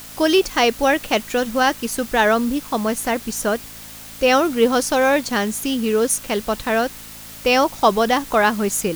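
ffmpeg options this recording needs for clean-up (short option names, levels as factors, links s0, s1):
-af "bandreject=f=54.4:t=h:w=4,bandreject=f=108.8:t=h:w=4,bandreject=f=163.2:t=h:w=4,bandreject=f=217.6:t=h:w=4,bandreject=f=272:t=h:w=4,afwtdn=0.013"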